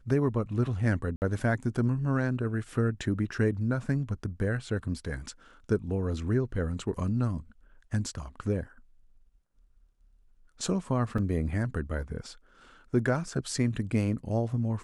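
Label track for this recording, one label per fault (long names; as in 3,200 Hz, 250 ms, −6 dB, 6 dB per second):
1.160000	1.220000	drop-out 59 ms
11.180000	11.180000	drop-out 3.7 ms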